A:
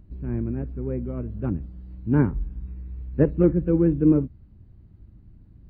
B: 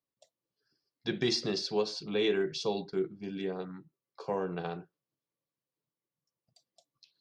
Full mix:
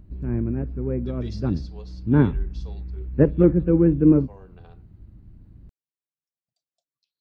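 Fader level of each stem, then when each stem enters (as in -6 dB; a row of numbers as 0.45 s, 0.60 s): +2.5 dB, -15.5 dB; 0.00 s, 0.00 s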